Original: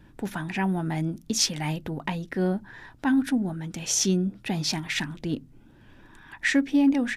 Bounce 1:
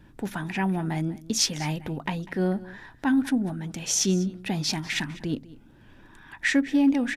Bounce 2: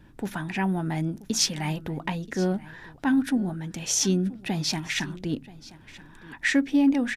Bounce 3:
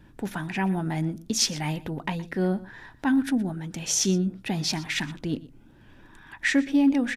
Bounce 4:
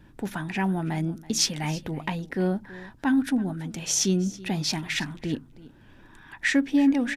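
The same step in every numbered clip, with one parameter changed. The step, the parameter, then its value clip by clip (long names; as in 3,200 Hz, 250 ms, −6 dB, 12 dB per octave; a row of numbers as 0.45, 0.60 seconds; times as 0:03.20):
single-tap delay, delay time: 197, 980, 120, 328 milliseconds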